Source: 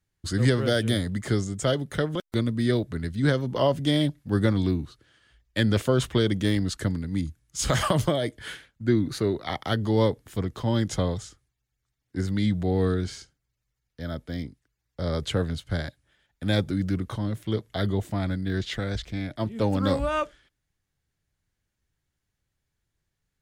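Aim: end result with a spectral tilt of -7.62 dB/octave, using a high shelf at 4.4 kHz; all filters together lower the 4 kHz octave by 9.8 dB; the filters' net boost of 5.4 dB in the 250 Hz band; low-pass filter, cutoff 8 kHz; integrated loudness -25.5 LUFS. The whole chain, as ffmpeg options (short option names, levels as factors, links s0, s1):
-af "lowpass=8000,equalizer=f=250:t=o:g=7,equalizer=f=4000:t=o:g=-9,highshelf=f=4400:g=-7.5,volume=0.841"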